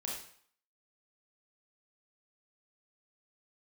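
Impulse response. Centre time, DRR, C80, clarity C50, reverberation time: 46 ms, -3.5 dB, 6.5 dB, 2.0 dB, 0.55 s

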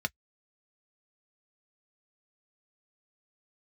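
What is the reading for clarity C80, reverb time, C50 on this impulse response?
60.0 dB, no single decay rate, 48.0 dB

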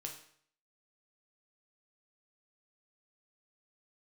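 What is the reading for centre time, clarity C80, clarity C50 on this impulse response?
21 ms, 11.0 dB, 7.5 dB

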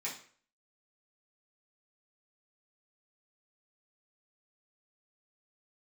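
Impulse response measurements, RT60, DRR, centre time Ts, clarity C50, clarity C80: 0.50 s, -8.0 dB, 26 ms, 7.5 dB, 12.5 dB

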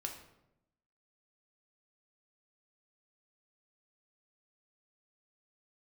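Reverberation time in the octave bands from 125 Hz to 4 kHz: 1.0 s, 1.1 s, 0.95 s, 0.80 s, 0.65 s, 0.55 s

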